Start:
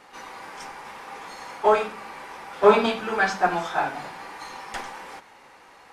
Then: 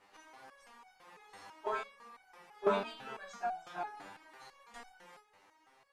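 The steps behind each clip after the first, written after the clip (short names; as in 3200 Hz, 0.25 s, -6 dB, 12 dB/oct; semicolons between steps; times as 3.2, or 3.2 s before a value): stepped resonator 6 Hz 99–750 Hz; gain -4 dB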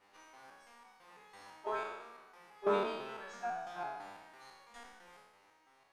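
spectral trails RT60 1.17 s; notch 7400 Hz, Q 23; gain -3.5 dB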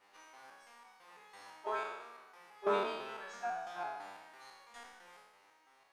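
low shelf 300 Hz -9 dB; gain +1.5 dB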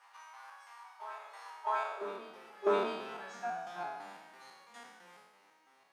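high-pass sweep 990 Hz -> 180 Hz, 1.56–3.08; reverse echo 0.652 s -12.5 dB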